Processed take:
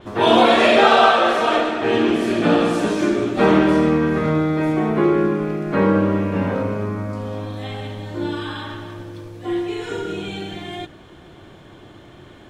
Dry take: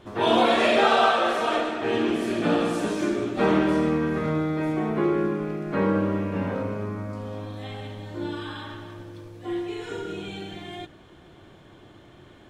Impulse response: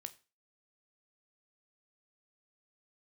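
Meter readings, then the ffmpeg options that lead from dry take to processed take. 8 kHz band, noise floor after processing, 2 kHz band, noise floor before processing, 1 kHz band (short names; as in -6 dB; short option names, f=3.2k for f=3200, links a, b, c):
n/a, -44 dBFS, +6.5 dB, -51 dBFS, +6.5 dB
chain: -af "adynamicequalizer=threshold=0.00631:dfrequency=6900:dqfactor=0.7:tfrequency=6900:tqfactor=0.7:attack=5:release=100:ratio=0.375:range=2.5:mode=cutabove:tftype=highshelf,volume=6.5dB"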